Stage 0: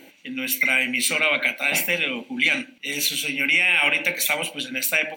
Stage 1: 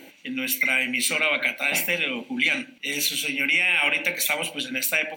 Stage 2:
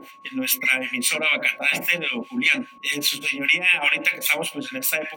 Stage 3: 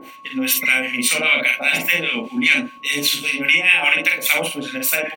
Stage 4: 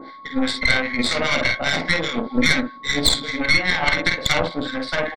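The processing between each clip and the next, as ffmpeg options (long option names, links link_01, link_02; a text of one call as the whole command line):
ffmpeg -i in.wav -filter_complex "[0:a]bandreject=frequency=50:width_type=h:width=6,bandreject=frequency=100:width_type=h:width=6,bandreject=frequency=150:width_type=h:width=6,asplit=2[link_01][link_02];[link_02]acompressor=threshold=-28dB:ratio=6,volume=-1dB[link_03];[link_01][link_03]amix=inputs=2:normalize=0,volume=-4dB" out.wav
ffmpeg -i in.wav -filter_complex "[0:a]acrossover=split=1100[link_01][link_02];[link_01]aeval=exprs='val(0)*(1-1/2+1/2*cos(2*PI*5*n/s))':channel_layout=same[link_03];[link_02]aeval=exprs='val(0)*(1-1/2-1/2*cos(2*PI*5*n/s))':channel_layout=same[link_04];[link_03][link_04]amix=inputs=2:normalize=0,aeval=exprs='val(0)+0.00251*sin(2*PI*1100*n/s)':channel_layout=same,volume=6dB" out.wav
ffmpeg -i in.wav -filter_complex "[0:a]asplit=2[link_01][link_02];[link_02]adelay=49,volume=-4dB[link_03];[link_01][link_03]amix=inputs=2:normalize=0,volume=2.5dB" out.wav
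ffmpeg -i in.wav -af "asuperstop=centerf=2700:order=12:qfactor=2.4,aresample=11025,aresample=44100,aeval=exprs='0.422*(cos(1*acos(clip(val(0)/0.422,-1,1)))-cos(1*PI/2))+0.133*(cos(4*acos(clip(val(0)/0.422,-1,1)))-cos(4*PI/2))':channel_layout=same,volume=1.5dB" out.wav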